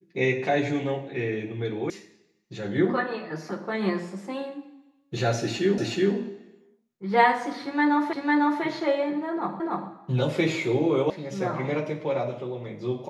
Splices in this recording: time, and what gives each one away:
0:01.90: cut off before it has died away
0:05.78: the same again, the last 0.37 s
0:08.13: the same again, the last 0.5 s
0:09.60: the same again, the last 0.29 s
0:11.10: cut off before it has died away

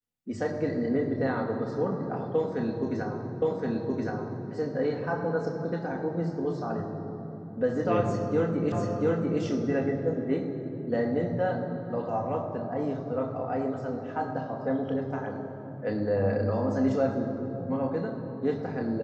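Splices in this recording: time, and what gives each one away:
0:03.42: the same again, the last 1.07 s
0:08.72: the same again, the last 0.69 s

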